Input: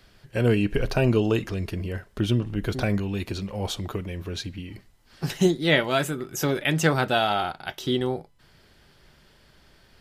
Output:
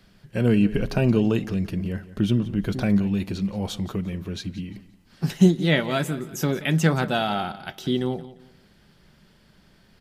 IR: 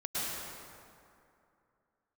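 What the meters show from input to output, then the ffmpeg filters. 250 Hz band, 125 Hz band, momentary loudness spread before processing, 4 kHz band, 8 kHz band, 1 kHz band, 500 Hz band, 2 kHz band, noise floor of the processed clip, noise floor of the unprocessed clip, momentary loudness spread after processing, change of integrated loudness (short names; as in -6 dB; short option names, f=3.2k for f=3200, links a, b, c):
+4.5 dB, +2.5 dB, 12 LU, -2.5 dB, -2.5 dB, -2.0 dB, -1.5 dB, -2.5 dB, -57 dBFS, -58 dBFS, 13 LU, +1.5 dB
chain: -filter_complex "[0:a]equalizer=f=190:w=1.9:g=11,asplit=2[a][b];[b]aecho=0:1:175|350|525:0.15|0.0434|0.0126[c];[a][c]amix=inputs=2:normalize=0,volume=-2.5dB"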